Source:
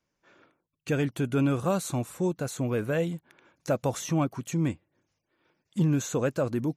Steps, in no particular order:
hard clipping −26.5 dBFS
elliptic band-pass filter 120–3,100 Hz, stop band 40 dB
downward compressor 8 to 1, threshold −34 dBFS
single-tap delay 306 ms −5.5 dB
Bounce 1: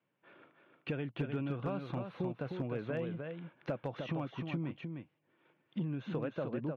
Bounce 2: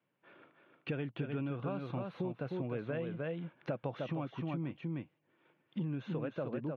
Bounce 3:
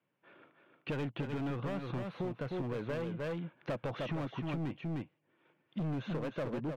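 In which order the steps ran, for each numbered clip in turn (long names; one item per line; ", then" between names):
elliptic band-pass filter, then downward compressor, then single-tap delay, then hard clipping
single-tap delay, then downward compressor, then hard clipping, then elliptic band-pass filter
elliptic band-pass filter, then hard clipping, then single-tap delay, then downward compressor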